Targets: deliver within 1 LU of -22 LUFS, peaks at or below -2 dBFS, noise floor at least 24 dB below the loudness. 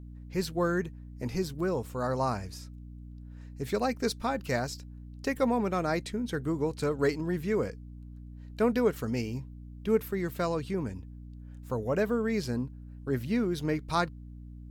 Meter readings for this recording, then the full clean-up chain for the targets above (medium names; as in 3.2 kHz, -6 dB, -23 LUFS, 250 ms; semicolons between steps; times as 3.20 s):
hum 60 Hz; highest harmonic 300 Hz; hum level -42 dBFS; loudness -31.0 LUFS; peak level -13.5 dBFS; loudness target -22.0 LUFS
-> hum notches 60/120/180/240/300 Hz; trim +9 dB